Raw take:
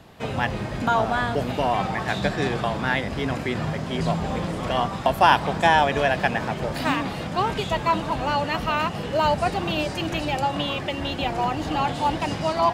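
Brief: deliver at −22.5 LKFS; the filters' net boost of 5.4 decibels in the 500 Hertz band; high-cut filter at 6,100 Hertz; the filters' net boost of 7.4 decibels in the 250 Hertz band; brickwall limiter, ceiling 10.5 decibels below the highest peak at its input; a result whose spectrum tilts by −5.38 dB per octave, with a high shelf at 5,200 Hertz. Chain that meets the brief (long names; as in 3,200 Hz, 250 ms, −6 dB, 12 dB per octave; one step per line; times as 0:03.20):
low-pass filter 6,100 Hz
parametric band 250 Hz +8 dB
parametric band 500 Hz +5.5 dB
high-shelf EQ 5,200 Hz −8 dB
brickwall limiter −11.5 dBFS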